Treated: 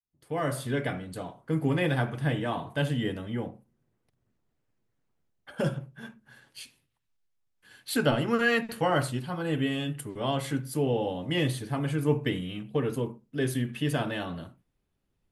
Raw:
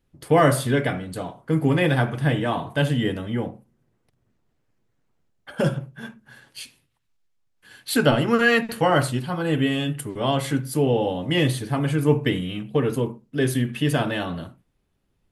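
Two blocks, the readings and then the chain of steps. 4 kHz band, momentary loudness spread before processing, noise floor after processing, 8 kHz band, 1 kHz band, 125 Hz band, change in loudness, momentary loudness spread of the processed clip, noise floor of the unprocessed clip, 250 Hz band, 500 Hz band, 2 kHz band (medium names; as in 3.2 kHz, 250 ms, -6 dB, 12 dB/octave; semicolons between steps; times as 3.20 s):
-6.5 dB, 15 LU, -77 dBFS, -7.0 dB, -7.5 dB, -7.0 dB, -7.0 dB, 15 LU, -71 dBFS, -6.5 dB, -7.0 dB, -6.5 dB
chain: fade-in on the opening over 0.91 s; trim -6.5 dB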